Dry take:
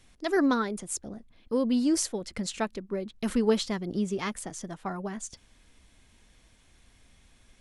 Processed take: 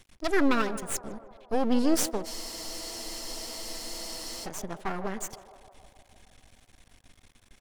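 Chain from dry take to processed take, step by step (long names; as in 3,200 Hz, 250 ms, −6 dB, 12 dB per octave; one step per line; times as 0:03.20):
half-wave rectification
feedback echo with a band-pass in the loop 155 ms, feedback 74%, band-pass 690 Hz, level −12 dB
frozen spectrum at 0:02.27, 2.18 s
level +5.5 dB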